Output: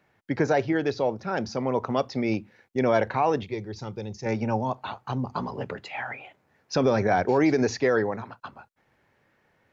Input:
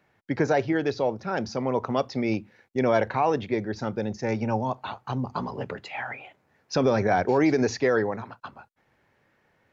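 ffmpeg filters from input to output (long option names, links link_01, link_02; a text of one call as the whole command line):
ffmpeg -i in.wav -filter_complex "[0:a]asettb=1/sr,asplit=3[link_01][link_02][link_03];[link_01]atrim=end=3.434[link_04];[link_02]atrim=start=3.43:end=4.26,asetpts=PTS-STARTPTS,afade=type=in:duration=0.004:curve=qsin,afade=type=out:start_time=0.826:duration=0.004:curve=qsin,equalizer=frequency=250:width_type=o:width=0.67:gain=-11,equalizer=frequency=630:width_type=o:width=0.67:gain=-10,equalizer=frequency=1600:width_type=o:width=0.67:gain=-12[link_05];[link_03]atrim=start=4.256[link_06];[link_04][link_05]acrossfade=duration=0.004:curve1=hsin:curve2=qsin[link_07];[link_07][link_06]acrossfade=duration=0.004:curve1=qsin:curve2=hsin" out.wav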